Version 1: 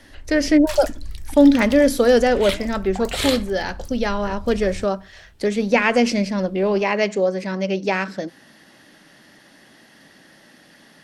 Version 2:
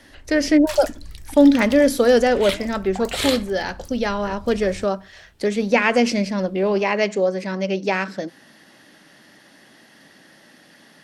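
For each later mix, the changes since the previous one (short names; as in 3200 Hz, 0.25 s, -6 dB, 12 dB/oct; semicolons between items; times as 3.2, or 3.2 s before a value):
master: add low shelf 66 Hz -8.5 dB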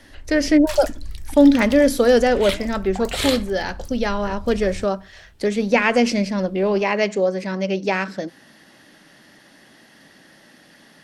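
master: add low shelf 66 Hz +8.5 dB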